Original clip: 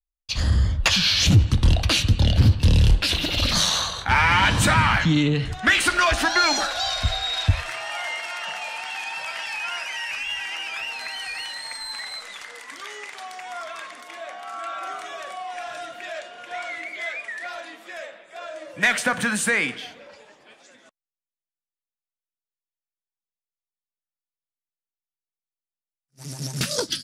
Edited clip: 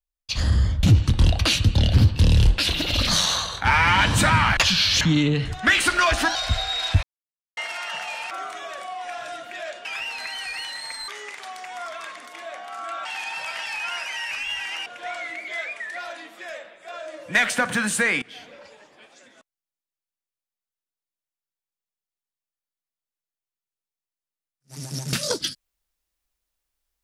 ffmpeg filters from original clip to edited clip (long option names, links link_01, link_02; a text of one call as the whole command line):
ffmpeg -i in.wav -filter_complex "[0:a]asplit=13[link_01][link_02][link_03][link_04][link_05][link_06][link_07][link_08][link_09][link_10][link_11][link_12][link_13];[link_01]atrim=end=0.832[link_14];[link_02]atrim=start=1.268:end=5.012[link_15];[link_03]atrim=start=0.828:end=1.272[link_16];[link_04]atrim=start=5.008:end=6.352[link_17];[link_05]atrim=start=6.888:end=7.57,asetpts=PTS-STARTPTS,afade=type=out:start_time=0.678:duration=0.004:curve=hsin[link_18];[link_06]atrim=start=7.57:end=8.11,asetpts=PTS-STARTPTS,volume=0[link_19];[link_07]atrim=start=8.11:end=8.852,asetpts=PTS-STARTPTS,afade=type=in:duration=0.004:curve=hsin[link_20];[link_08]atrim=start=14.798:end=16.342[link_21];[link_09]atrim=start=10.658:end=11.892[link_22];[link_10]atrim=start=12.828:end=14.802[link_23];[link_11]atrim=start=8.848:end=10.662[link_24];[link_12]atrim=start=16.338:end=19.7,asetpts=PTS-STARTPTS,afade=type=out:start_time=3.358:duration=0.004:curve=hsin:silence=0.0841395[link_25];[link_13]atrim=start=19.7,asetpts=PTS-STARTPTS,afade=type=in:duration=0.25:silence=0.0841395[link_26];[link_14][link_15]acrossfade=duration=0.004:curve1=hsin:curve2=hsin[link_27];[link_27][link_16]acrossfade=duration=0.004:curve1=hsin:curve2=hsin[link_28];[link_28][link_17]acrossfade=duration=0.004:curve1=hsin:curve2=hsin[link_29];[link_18][link_19][link_20]concat=n=3:v=0:a=1[link_30];[link_29][link_30]acrossfade=duration=0.004:curve1=hsin:curve2=hsin[link_31];[link_31][link_21]acrossfade=duration=0.004:curve1=hsin:curve2=hsin[link_32];[link_32][link_22]acrossfade=duration=0.004:curve1=hsin:curve2=hsin[link_33];[link_33][link_23]acrossfade=duration=0.004:curve1=hsin:curve2=hsin[link_34];[link_34][link_24]acrossfade=duration=0.004:curve1=hsin:curve2=hsin[link_35];[link_25][link_26]concat=n=2:v=0:a=1[link_36];[link_35][link_36]acrossfade=duration=0.004:curve1=hsin:curve2=hsin" out.wav